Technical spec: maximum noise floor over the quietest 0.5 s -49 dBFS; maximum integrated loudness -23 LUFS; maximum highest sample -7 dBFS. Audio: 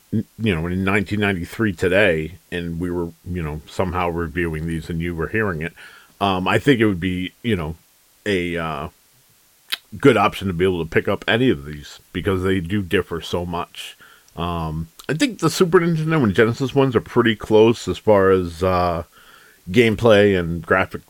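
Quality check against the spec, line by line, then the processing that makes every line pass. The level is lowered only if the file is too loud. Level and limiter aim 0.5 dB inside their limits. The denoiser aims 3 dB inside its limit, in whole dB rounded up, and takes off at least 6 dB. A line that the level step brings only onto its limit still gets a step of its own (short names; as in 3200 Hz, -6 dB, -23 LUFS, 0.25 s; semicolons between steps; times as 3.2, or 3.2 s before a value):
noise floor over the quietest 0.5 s -56 dBFS: OK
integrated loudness -19.5 LUFS: fail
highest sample -2.0 dBFS: fail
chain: gain -4 dB; limiter -7.5 dBFS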